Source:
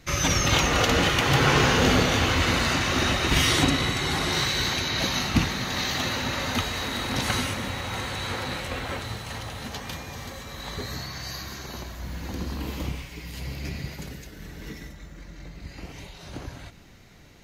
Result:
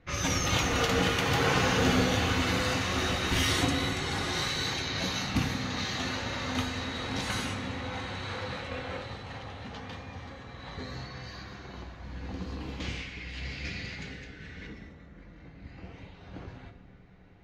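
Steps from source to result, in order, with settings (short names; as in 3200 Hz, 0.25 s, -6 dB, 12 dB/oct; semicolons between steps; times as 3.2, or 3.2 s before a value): low-pass opened by the level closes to 2000 Hz, open at -20 dBFS; flange 1.9 Hz, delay 9.7 ms, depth 1.2 ms, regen -50%; 12.8–14.67 band shelf 3500 Hz +10 dB 2.7 oct; dark delay 94 ms, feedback 84%, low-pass 410 Hz, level -12 dB; on a send at -6 dB: reverb RT60 0.75 s, pre-delay 3 ms; on the sum: gain -2.5 dB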